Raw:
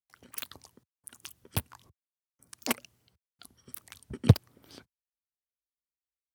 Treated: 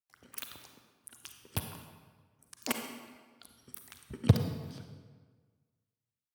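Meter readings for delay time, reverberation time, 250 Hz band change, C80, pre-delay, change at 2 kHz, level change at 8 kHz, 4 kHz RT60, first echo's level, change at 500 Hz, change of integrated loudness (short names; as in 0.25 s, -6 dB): none, 1.5 s, -2.0 dB, 7.0 dB, 35 ms, -2.5 dB, -2.5 dB, 1.1 s, none, -2.0 dB, -4.0 dB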